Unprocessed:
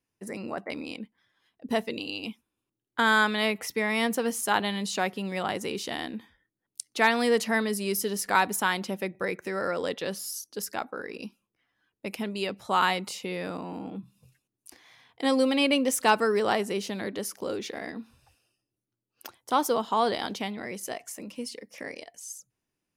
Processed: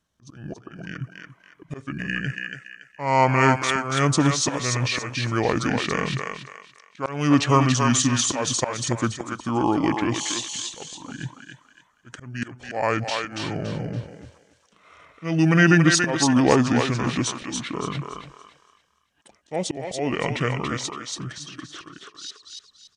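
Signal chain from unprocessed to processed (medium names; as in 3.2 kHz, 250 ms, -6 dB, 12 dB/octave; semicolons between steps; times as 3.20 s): pitch shift -8.5 st; slow attack 357 ms; thinning echo 283 ms, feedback 33%, high-pass 620 Hz, level -3 dB; trim +8.5 dB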